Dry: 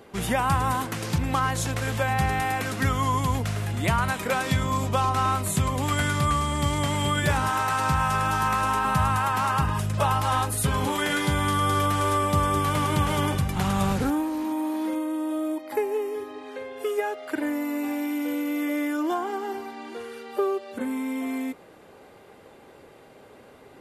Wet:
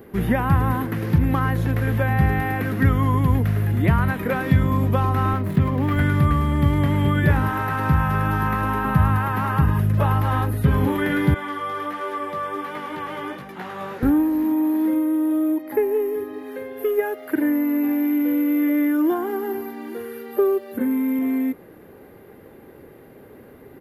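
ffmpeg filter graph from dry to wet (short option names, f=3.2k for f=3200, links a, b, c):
-filter_complex "[0:a]asettb=1/sr,asplit=3[a][b][c];[a]atrim=end=5.334[d];[b]atrim=start=5.33:end=5.97,asetpts=PTS-STARTPTS,afade=t=in:d=0.004:c=qsin,afade=t=out:st=0.636:d=0.004:c=qsin,highpass=96,adynamicsmooth=sensitivity=7:basefreq=1.4k[e];[c]atrim=start=5.966[f];[d][e]acrossfade=d=0.004:c1=hsin:c2=qsin[g];[g][f]acrossfade=d=0.004:c1=qsin:c2=hsin,asettb=1/sr,asplit=3[h][i][j];[h]atrim=end=11.344[k];[i]atrim=start=11.34:end=14.03,asetpts=PTS-STARTPTS,afade=t=in:d=0.004:c=qsin,afade=t=out:st=2.686:d=0.004:c=qsin,highpass=490,lowpass=5.6k,flanger=delay=15.5:depth=3.4:speed=1.4[l];[j]atrim=start=14.026[m];[k][l]acrossfade=d=0.004:c1=hsin:c2=qsin[n];[n][m]acrossfade=d=0.004:c1=qsin:c2=hsin,asettb=1/sr,asplit=3[o][p][q];[o]atrim=end=16.334[r];[p]atrim=start=16.33:end=21.19,asetpts=PTS-STARTPTS,afade=t=in:d=0.004:c=qsin,afade=t=out:st=4.856:d=0.004:c=qsin,highpass=80,highshelf=f=8.4k:g=11[s];[q]atrim=start=21.186[t];[r][s]acrossfade=d=0.004:c1=hsin:c2=qsin[u];[u][t]acrossfade=d=0.004:c1=qsin:c2=hsin,equalizer=f=1.8k:t=o:w=0.51:g=7,acrossover=split=4100[v][w];[w]acompressor=threshold=-48dB:ratio=4:attack=1:release=60[x];[v][x]amix=inputs=2:normalize=0,firequalizer=gain_entry='entry(350,0);entry(640,-9);entry(3100,-14);entry(8100,-18);entry(12000,4)':delay=0.05:min_phase=1,volume=8dB"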